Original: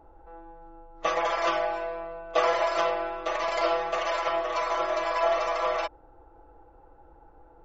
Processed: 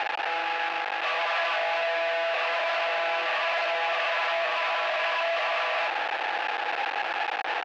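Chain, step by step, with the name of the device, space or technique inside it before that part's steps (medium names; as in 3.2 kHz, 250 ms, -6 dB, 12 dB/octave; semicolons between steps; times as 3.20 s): home computer beeper (one-bit comparator; cabinet simulation 690–4100 Hz, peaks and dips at 730 Hz +9 dB, 1.7 kHz +8 dB, 2.6 kHz +9 dB)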